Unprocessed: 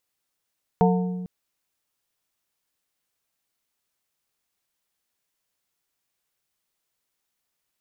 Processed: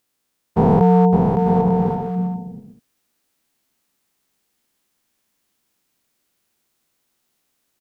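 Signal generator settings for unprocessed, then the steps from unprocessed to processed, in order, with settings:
struck glass plate, length 0.45 s, lowest mode 181 Hz, modes 4, decay 1.76 s, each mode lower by 2 dB, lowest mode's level −16 dB
every bin's largest magnitude spread in time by 480 ms
parametric band 250 Hz +8 dB 1.2 octaves
bouncing-ball delay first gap 560 ms, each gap 0.6×, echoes 5

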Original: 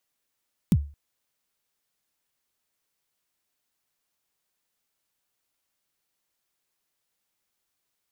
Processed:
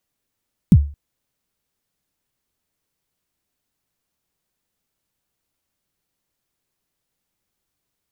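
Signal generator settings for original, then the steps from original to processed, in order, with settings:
synth kick length 0.22 s, from 230 Hz, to 72 Hz, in 50 ms, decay 0.35 s, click on, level −12 dB
low-shelf EQ 370 Hz +12 dB

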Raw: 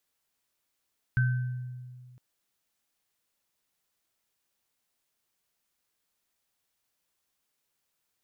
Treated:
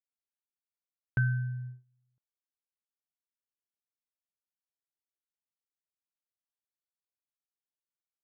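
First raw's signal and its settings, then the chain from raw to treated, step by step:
inharmonic partials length 1.01 s, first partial 125 Hz, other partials 1,540 Hz, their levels −7 dB, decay 2.00 s, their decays 0.79 s, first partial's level −20.5 dB
elliptic low-pass filter 1,600 Hz
noise gate −41 dBFS, range −25 dB

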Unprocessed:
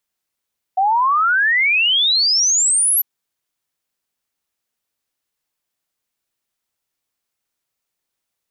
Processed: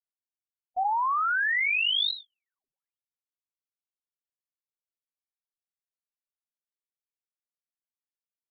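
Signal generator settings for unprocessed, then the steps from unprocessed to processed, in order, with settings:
exponential sine sweep 740 Hz → 12,000 Hz 2.25 s −12.5 dBFS
spectral dynamics exaggerated over time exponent 3
brickwall limiter −22.5 dBFS
linear-prediction vocoder at 8 kHz pitch kept

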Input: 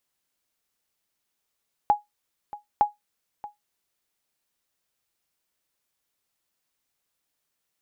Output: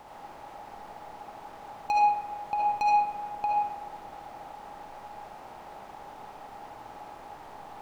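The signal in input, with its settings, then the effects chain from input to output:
ping with an echo 831 Hz, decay 0.16 s, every 0.91 s, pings 2, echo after 0.63 s, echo −18 dB −10.5 dBFS
compressor on every frequency bin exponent 0.4
soft clipping −23 dBFS
comb and all-pass reverb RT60 1.4 s, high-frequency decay 0.45×, pre-delay 30 ms, DRR −4 dB

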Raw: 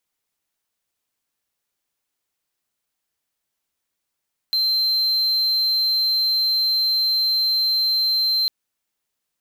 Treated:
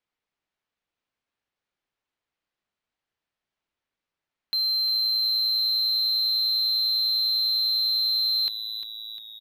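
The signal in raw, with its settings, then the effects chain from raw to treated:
tone triangle 4,120 Hz −15 dBFS 3.95 s
low-pass filter 3,300 Hz 12 dB per octave
leveller curve on the samples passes 1
on a send: echo with shifted repeats 351 ms, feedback 58%, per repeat −110 Hz, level −10.5 dB

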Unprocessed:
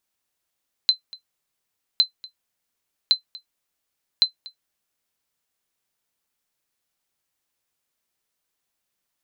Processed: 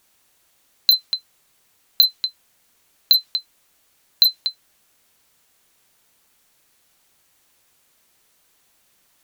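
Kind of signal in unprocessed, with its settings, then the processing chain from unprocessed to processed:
ping with an echo 4,070 Hz, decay 0.11 s, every 1.11 s, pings 4, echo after 0.24 s, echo −22 dB −7 dBFS
notch filter 5,100 Hz, Q 27
dynamic equaliser 4,100 Hz, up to +5 dB, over −33 dBFS, Q 0.85
in parallel at −6 dB: sine wavefolder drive 19 dB, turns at −7 dBFS

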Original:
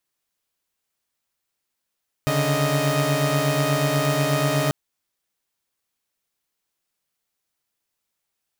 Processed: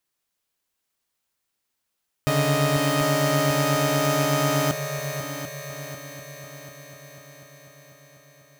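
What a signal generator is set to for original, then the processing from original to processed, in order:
held notes C#3/D3/D#5 saw, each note −21 dBFS 2.44 s
echo machine with several playback heads 247 ms, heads second and third, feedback 63%, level −9.5 dB

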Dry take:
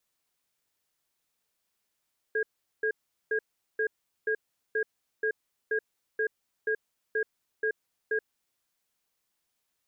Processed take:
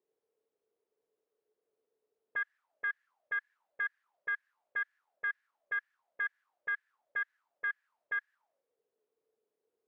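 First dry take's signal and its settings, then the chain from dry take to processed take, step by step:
tone pair in a cadence 436 Hz, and 1,630 Hz, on 0.08 s, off 0.40 s, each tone −27.5 dBFS 5.97 s
in parallel at −11.5 dB: bit-depth reduction 8 bits, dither triangular
on the sum: envelope filter 400–1,700 Hz, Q 12, up, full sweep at −31.5 dBFS
highs frequency-modulated by the lows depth 0.17 ms

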